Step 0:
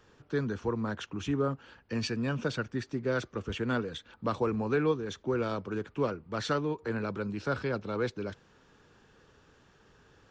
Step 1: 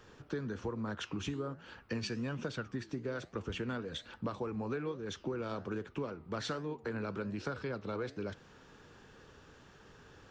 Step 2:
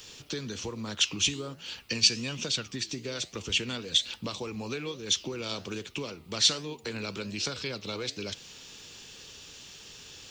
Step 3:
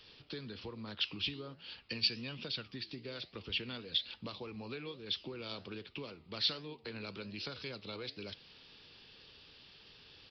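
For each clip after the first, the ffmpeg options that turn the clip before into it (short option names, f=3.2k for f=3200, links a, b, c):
-af "acompressor=threshold=-38dB:ratio=10,flanger=delay=7.6:depth=10:regen=-85:speed=1.2:shape=triangular,volume=8dB"
-af "aexciter=amount=9.5:drive=3.6:freq=2.3k,volume=1dB"
-af "aresample=11025,aresample=44100,volume=-8.5dB"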